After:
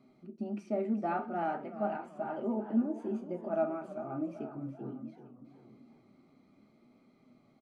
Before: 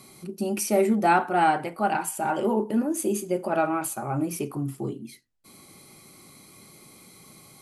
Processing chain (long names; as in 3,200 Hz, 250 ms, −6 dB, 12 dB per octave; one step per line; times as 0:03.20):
parametric band 95 Hz −5.5 dB 1.5 octaves
notch filter 1,100 Hz, Q 11
hollow resonant body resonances 250/640/1,200 Hz, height 12 dB, ringing for 65 ms
flanger 0.42 Hz, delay 7.2 ms, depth 5.4 ms, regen +76%
head-to-tape spacing loss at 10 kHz 36 dB
single-tap delay 850 ms −19 dB
feedback echo with a swinging delay time 383 ms, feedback 43%, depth 131 cents, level −12.5 dB
level −7.5 dB